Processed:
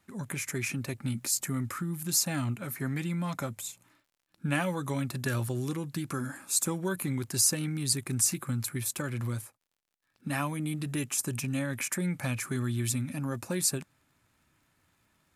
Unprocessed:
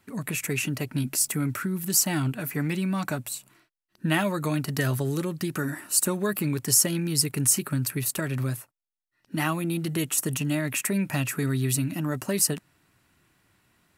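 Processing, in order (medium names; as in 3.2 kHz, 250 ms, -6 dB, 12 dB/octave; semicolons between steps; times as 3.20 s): tape speed -9%; crackle 95 per s -55 dBFS; trim -5 dB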